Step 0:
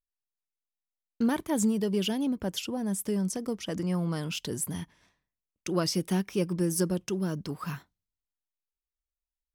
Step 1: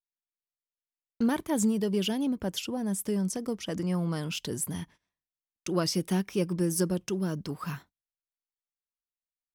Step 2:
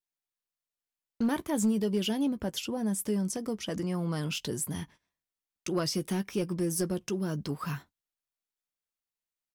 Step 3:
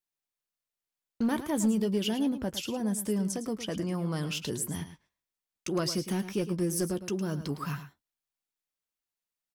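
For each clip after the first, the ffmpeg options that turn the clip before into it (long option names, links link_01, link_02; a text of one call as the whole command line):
ffmpeg -i in.wav -af "agate=range=-19dB:threshold=-51dB:ratio=16:detection=peak" out.wav
ffmpeg -i in.wav -filter_complex "[0:a]asplit=2[link_01][link_02];[link_02]alimiter=level_in=2dB:limit=-24dB:level=0:latency=1:release=155,volume=-2dB,volume=1dB[link_03];[link_01][link_03]amix=inputs=2:normalize=0,asoftclip=type=hard:threshold=-16.5dB,asplit=2[link_04][link_05];[link_05]adelay=14,volume=-12dB[link_06];[link_04][link_06]amix=inputs=2:normalize=0,volume=-5.5dB" out.wav
ffmpeg -i in.wav -af "aecho=1:1:109:0.251" out.wav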